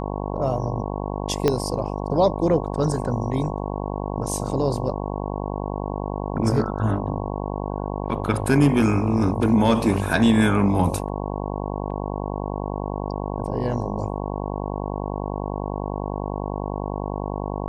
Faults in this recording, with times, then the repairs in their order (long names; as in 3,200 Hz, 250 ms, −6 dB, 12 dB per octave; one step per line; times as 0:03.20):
mains buzz 50 Hz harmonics 22 −28 dBFS
0:01.48: click −6 dBFS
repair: click removal
hum removal 50 Hz, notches 22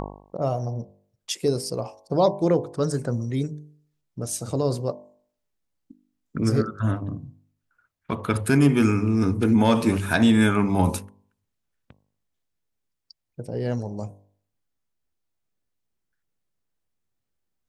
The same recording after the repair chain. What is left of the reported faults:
0:01.48: click